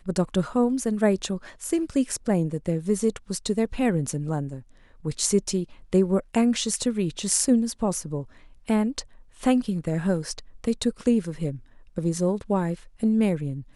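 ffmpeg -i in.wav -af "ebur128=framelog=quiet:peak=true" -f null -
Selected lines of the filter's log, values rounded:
Integrated loudness:
  I:         -25.3 LUFS
  Threshold: -35.7 LUFS
Loudness range:
  LRA:         2.9 LU
  Threshold: -45.8 LUFS
  LRA low:   -27.0 LUFS
  LRA high:  -24.1 LUFS
True peak:
  Peak:       -4.5 dBFS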